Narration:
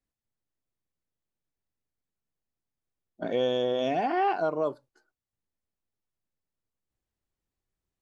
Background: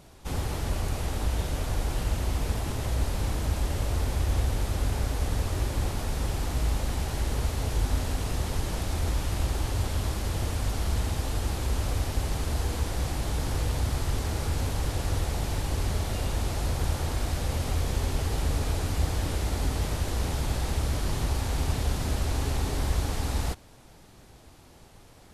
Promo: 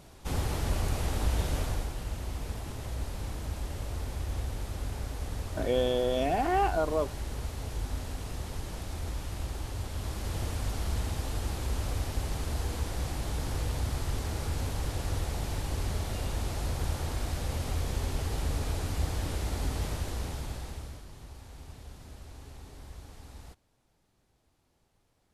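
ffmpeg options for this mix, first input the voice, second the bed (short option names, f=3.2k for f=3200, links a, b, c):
-filter_complex "[0:a]adelay=2350,volume=-1dB[a];[1:a]volume=3.5dB,afade=t=out:st=1.58:d=0.35:silence=0.421697,afade=t=in:st=9.9:d=0.46:silence=0.630957,afade=t=out:st=19.87:d=1.19:silence=0.16788[b];[a][b]amix=inputs=2:normalize=0"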